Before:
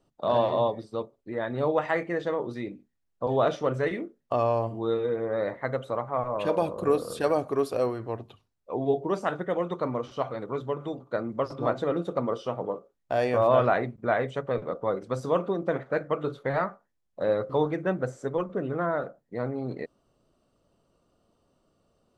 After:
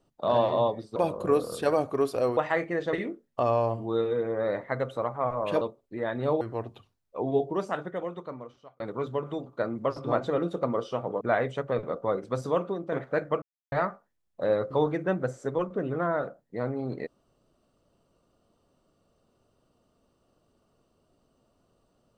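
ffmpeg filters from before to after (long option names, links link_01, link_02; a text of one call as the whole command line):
ffmpeg -i in.wav -filter_complex "[0:a]asplit=11[link_01][link_02][link_03][link_04][link_05][link_06][link_07][link_08][link_09][link_10][link_11];[link_01]atrim=end=0.962[link_12];[link_02]atrim=start=6.538:end=7.952[link_13];[link_03]atrim=start=1.758:end=2.322[link_14];[link_04]atrim=start=3.858:end=6.542[link_15];[link_05]atrim=start=0.958:end=1.762[link_16];[link_06]atrim=start=7.948:end=10.34,asetpts=PTS-STARTPTS,afade=type=out:start_time=0.902:duration=1.49[link_17];[link_07]atrim=start=10.34:end=12.752,asetpts=PTS-STARTPTS,afade=type=in:duration=0.004:curve=hsin[link_18];[link_08]atrim=start=13.998:end=15.71,asetpts=PTS-STARTPTS,afade=type=out:start_time=1.192:duration=0.52:silence=0.473151[link_19];[link_09]atrim=start=15.71:end=16.21,asetpts=PTS-STARTPTS,afade=type=in:duration=0.004:curve=hsin:silence=0.473151,afade=type=out:start_time=0.496:duration=0.004:curve=hsin[link_20];[link_10]atrim=start=16.21:end=16.51,asetpts=PTS-STARTPTS,volume=0[link_21];[link_11]atrim=start=16.51,asetpts=PTS-STARTPTS,afade=type=in:duration=0.004:curve=hsin[link_22];[link_12][link_13]acrossfade=duration=0.004:curve1=hsin:curve2=hsin[link_23];[link_23][link_14]acrossfade=duration=0.004:curve1=hsin:curve2=hsin[link_24];[link_24][link_15]acrossfade=duration=0.004:curve1=hsin:curve2=hsin[link_25];[link_25][link_16]acrossfade=duration=0.004:curve1=hsin:curve2=hsin[link_26];[link_17][link_18]concat=n=2:v=0:a=1[link_27];[link_26][link_27]acrossfade=duration=0.004:curve1=hsin:curve2=hsin[link_28];[link_19][link_20][link_21][link_22]concat=n=4:v=0:a=1[link_29];[link_28][link_29]acrossfade=duration=0.004:curve1=hsin:curve2=hsin" out.wav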